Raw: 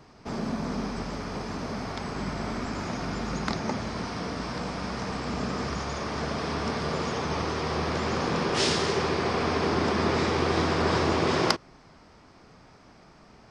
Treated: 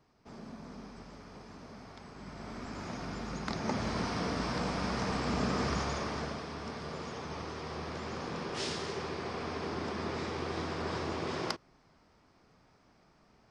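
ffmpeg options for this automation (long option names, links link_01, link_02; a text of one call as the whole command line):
ffmpeg -i in.wav -af "volume=-1dB,afade=type=in:start_time=2.18:duration=0.73:silence=0.398107,afade=type=in:start_time=3.46:duration=0.43:silence=0.446684,afade=type=out:start_time=5.78:duration=0.68:silence=0.298538" out.wav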